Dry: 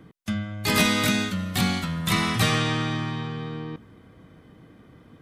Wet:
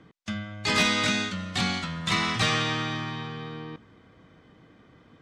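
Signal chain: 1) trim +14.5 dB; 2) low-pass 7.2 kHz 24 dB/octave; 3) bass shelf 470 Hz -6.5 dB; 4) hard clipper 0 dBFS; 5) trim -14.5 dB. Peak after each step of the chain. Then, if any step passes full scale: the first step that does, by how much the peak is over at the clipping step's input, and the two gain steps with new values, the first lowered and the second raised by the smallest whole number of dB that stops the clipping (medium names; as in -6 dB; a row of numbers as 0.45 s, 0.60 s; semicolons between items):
+7.0 dBFS, +6.5 dBFS, +4.0 dBFS, 0.0 dBFS, -14.5 dBFS; step 1, 4.0 dB; step 1 +10.5 dB, step 5 -10.5 dB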